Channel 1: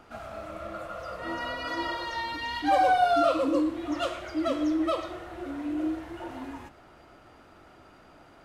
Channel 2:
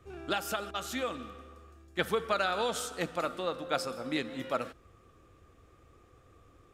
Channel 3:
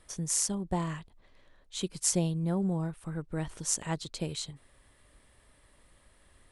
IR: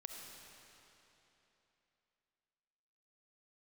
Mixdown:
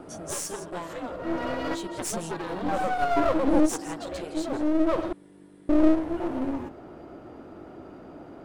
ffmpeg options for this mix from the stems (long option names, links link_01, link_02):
-filter_complex "[0:a]lowshelf=frequency=470:gain=6.5,volume=-4.5dB,asplit=3[link_01][link_02][link_03];[link_01]atrim=end=5.13,asetpts=PTS-STARTPTS,afade=type=out:start_time=5.126:duration=0.004:curve=hsin[link_04];[link_02]atrim=start=5.13:end=5.69,asetpts=PTS-STARTPTS,volume=0[link_05];[link_03]atrim=start=5.69,asetpts=PTS-STARTPTS,afade=type=in:duration=0.004:curve=hsin[link_06];[link_04][link_05][link_06]concat=n=3:v=0:a=1[link_07];[1:a]aeval=exprs='val(0)+0.00282*(sin(2*PI*50*n/s)+sin(2*PI*2*50*n/s)/2+sin(2*PI*3*50*n/s)/3+sin(2*PI*4*50*n/s)/4+sin(2*PI*5*50*n/s)/5)':channel_layout=same,aeval=exprs='val(0)*sin(2*PI*240*n/s)':channel_layout=same,volume=-9.5dB[link_08];[2:a]highpass=frequency=1300:poles=1,asplit=2[link_09][link_10];[link_10]adelay=11.3,afreqshift=-1.2[link_11];[link_09][link_11]amix=inputs=2:normalize=1,volume=0dB,asplit=3[link_12][link_13][link_14];[link_13]volume=-13.5dB[link_15];[link_14]apad=whole_len=372344[link_16];[link_07][link_16]sidechaincompress=threshold=-51dB:ratio=5:attack=7:release=631[link_17];[link_15]aecho=0:1:165:1[link_18];[link_17][link_08][link_12][link_18]amix=inputs=4:normalize=0,equalizer=frequency=350:width=0.41:gain=14.5,aeval=exprs='clip(val(0),-1,0.0224)':channel_layout=same"